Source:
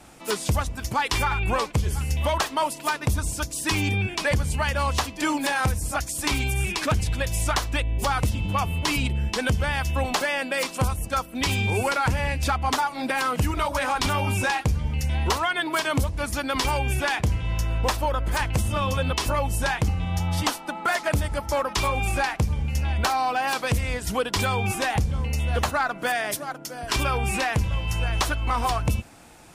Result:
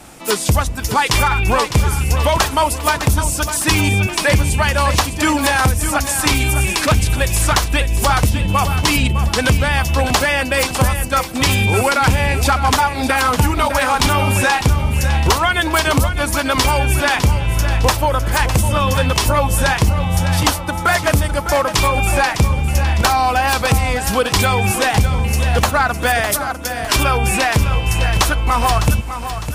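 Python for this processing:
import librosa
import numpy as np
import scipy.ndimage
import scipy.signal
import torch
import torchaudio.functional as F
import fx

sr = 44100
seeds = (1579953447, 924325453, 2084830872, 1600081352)

p1 = fx.high_shelf(x, sr, hz=9600.0, db=5.5)
p2 = p1 + fx.echo_feedback(p1, sr, ms=606, feedback_pct=40, wet_db=-10.0, dry=0)
y = p2 * librosa.db_to_amplitude(8.5)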